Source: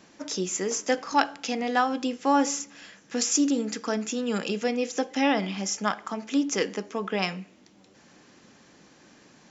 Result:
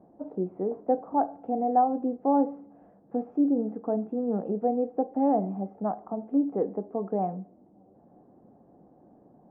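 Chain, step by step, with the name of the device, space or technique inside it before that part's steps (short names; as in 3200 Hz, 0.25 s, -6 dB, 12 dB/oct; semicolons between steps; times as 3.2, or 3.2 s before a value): under water (LPF 750 Hz 24 dB/oct; bell 730 Hz +9 dB 0.27 oct)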